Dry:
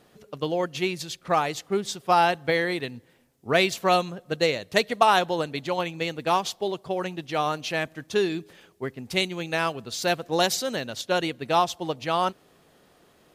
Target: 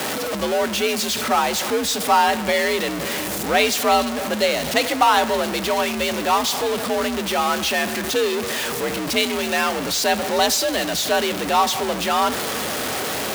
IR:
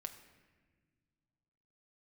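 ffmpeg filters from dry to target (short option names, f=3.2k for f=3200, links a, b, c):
-filter_complex "[0:a]aeval=exprs='val(0)+0.5*0.106*sgn(val(0))':c=same,asplit=2[a][b];[1:a]atrim=start_sample=2205,lowshelf=f=320:g=-10.5[c];[b][c]afir=irnorm=-1:irlink=0,volume=4.5dB[d];[a][d]amix=inputs=2:normalize=0,afreqshift=61,volume=-5dB"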